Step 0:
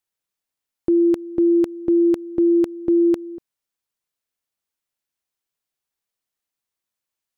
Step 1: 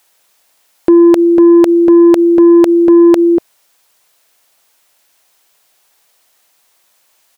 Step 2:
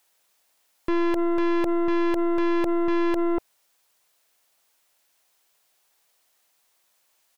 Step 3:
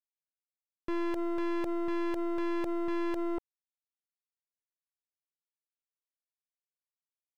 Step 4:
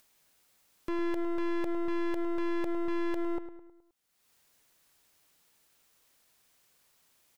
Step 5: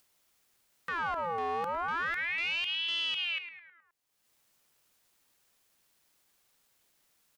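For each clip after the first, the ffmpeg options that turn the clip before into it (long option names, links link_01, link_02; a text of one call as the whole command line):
ffmpeg -i in.wav -af "firequalizer=gain_entry='entry(110,0);entry(640,14);entry(1200,11)':delay=0.05:min_phase=1,acontrast=46,alimiter=level_in=13.5dB:limit=-1dB:release=50:level=0:latency=1,volume=-1dB" out.wav
ffmpeg -i in.wav -af "aeval=exprs='(tanh(5.62*val(0)+0.75)-tanh(0.75))/5.62':channel_layout=same,volume=-7dB" out.wav
ffmpeg -i in.wav -af "aeval=exprs='sgn(val(0))*max(abs(val(0))-0.00355,0)':channel_layout=same,volume=-9dB" out.wav
ffmpeg -i in.wav -filter_complex "[0:a]acompressor=mode=upward:threshold=-45dB:ratio=2.5,asplit=2[link_01][link_02];[link_02]adelay=105,lowpass=frequency=3100:poles=1,volume=-11dB,asplit=2[link_03][link_04];[link_04]adelay=105,lowpass=frequency=3100:poles=1,volume=0.5,asplit=2[link_05][link_06];[link_06]adelay=105,lowpass=frequency=3100:poles=1,volume=0.5,asplit=2[link_07][link_08];[link_08]adelay=105,lowpass=frequency=3100:poles=1,volume=0.5,asplit=2[link_09][link_10];[link_10]adelay=105,lowpass=frequency=3100:poles=1,volume=0.5[link_11];[link_03][link_05][link_07][link_09][link_11]amix=inputs=5:normalize=0[link_12];[link_01][link_12]amix=inputs=2:normalize=0" out.wav
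ffmpeg -i in.wav -af "aeval=exprs='val(0)*sin(2*PI*1900*n/s+1900*0.6/0.34*sin(2*PI*0.34*n/s))':channel_layout=same" out.wav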